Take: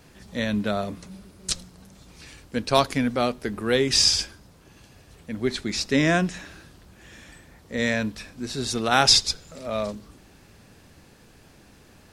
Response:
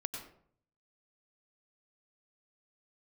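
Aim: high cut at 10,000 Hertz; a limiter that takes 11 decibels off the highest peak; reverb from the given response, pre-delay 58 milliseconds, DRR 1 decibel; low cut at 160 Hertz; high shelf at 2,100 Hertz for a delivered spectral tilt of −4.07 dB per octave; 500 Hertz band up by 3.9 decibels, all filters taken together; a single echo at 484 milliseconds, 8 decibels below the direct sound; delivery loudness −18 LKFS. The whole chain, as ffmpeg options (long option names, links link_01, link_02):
-filter_complex "[0:a]highpass=160,lowpass=10000,equalizer=frequency=500:width_type=o:gain=5.5,highshelf=frequency=2100:gain=-6.5,alimiter=limit=-14dB:level=0:latency=1,aecho=1:1:484:0.398,asplit=2[link_01][link_02];[1:a]atrim=start_sample=2205,adelay=58[link_03];[link_02][link_03]afir=irnorm=-1:irlink=0,volume=-1.5dB[link_04];[link_01][link_04]amix=inputs=2:normalize=0,volume=6.5dB"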